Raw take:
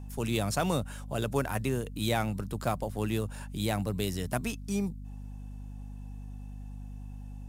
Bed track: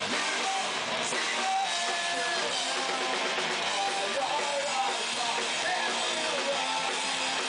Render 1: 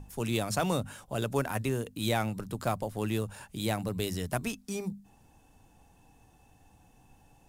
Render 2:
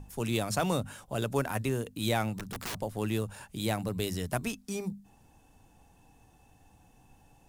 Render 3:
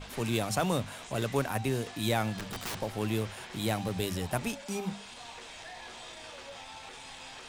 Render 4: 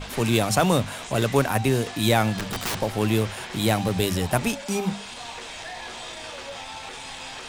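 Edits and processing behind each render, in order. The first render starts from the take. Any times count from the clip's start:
hum notches 50/100/150/200/250 Hz
2.33–2.75 s: integer overflow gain 31 dB
add bed track -16.5 dB
trim +9 dB

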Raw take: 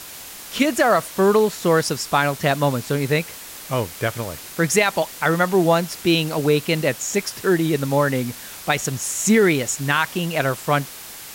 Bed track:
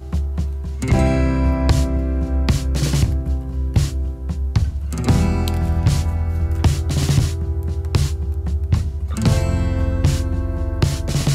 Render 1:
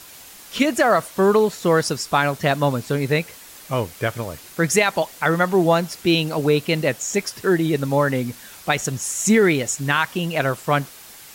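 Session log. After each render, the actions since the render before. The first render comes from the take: noise reduction 6 dB, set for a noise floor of -37 dBFS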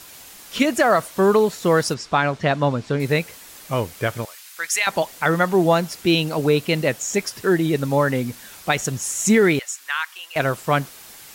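1.94–3.00 s: distance through air 100 m; 4.25–4.87 s: high-pass 1.5 kHz; 9.59–10.36 s: ladder high-pass 940 Hz, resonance 20%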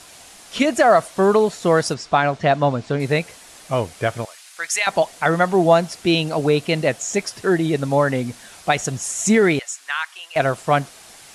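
steep low-pass 11 kHz 36 dB/octave; peaking EQ 690 Hz +6.5 dB 0.37 oct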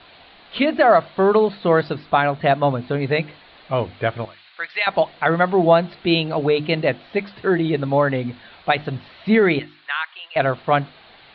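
steep low-pass 4.3 kHz 96 dB/octave; hum notches 50/100/150/200/250/300/350 Hz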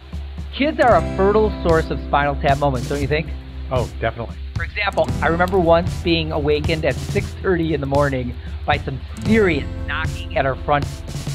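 add bed track -8 dB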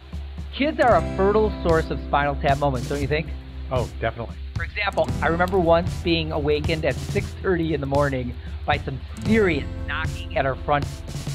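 trim -3.5 dB

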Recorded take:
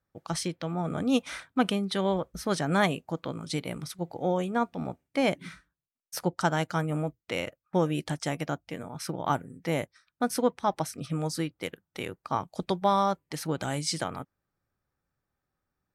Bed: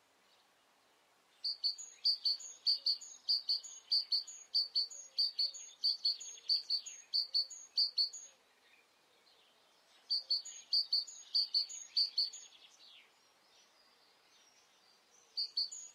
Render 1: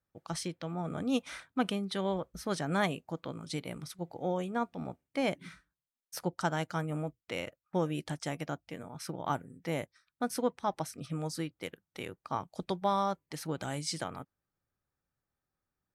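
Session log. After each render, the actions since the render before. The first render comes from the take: trim -5.5 dB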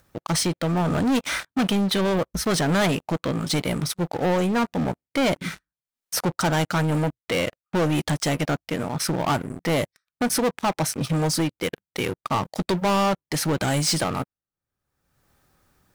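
waveshaping leveller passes 5; upward compressor, threshold -37 dBFS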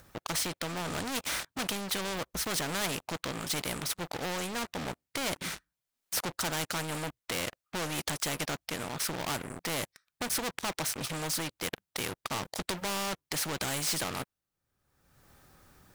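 spectrum-flattening compressor 2:1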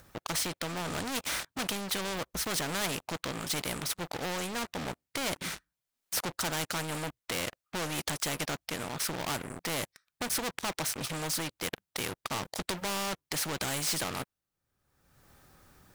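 no audible change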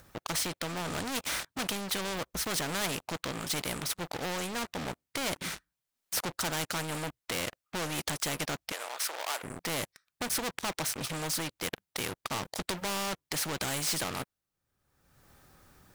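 8.72–9.43 s: high-pass 510 Hz 24 dB/octave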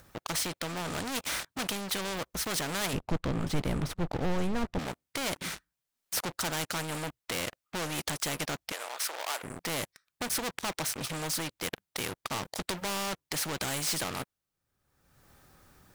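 2.93–4.79 s: tilt EQ -3.5 dB/octave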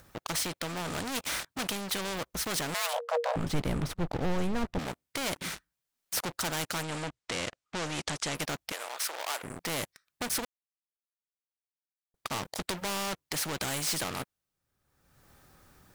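2.74–3.36 s: frequency shift +470 Hz; 6.83–8.35 s: low-pass 8.4 kHz 24 dB/octave; 10.45–12.14 s: mute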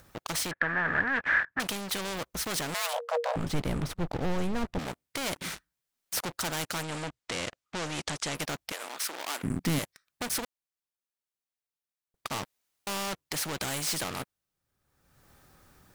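0.51–1.60 s: resonant low-pass 1.7 kHz, resonance Q 14; 8.82–9.79 s: resonant low shelf 360 Hz +11.5 dB, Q 1.5; 12.45–12.87 s: room tone

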